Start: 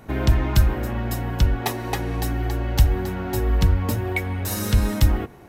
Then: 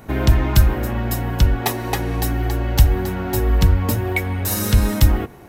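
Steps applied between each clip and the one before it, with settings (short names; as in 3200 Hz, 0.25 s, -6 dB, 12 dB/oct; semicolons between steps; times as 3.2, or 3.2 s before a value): high shelf 11000 Hz +6 dB; gain +3.5 dB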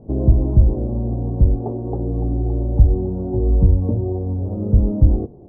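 inverse Chebyshev low-pass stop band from 2000 Hz, stop band 60 dB; short-mantissa float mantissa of 8-bit; gain +1 dB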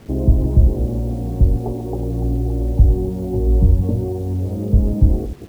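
reverse delay 0.124 s, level -11 dB; requantised 8-bit, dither none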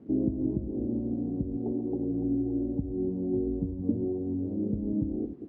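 compressor, threshold -13 dBFS, peak gain reduction 8 dB; band-pass 280 Hz, Q 3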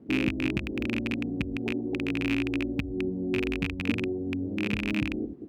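rattling part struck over -30 dBFS, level -18 dBFS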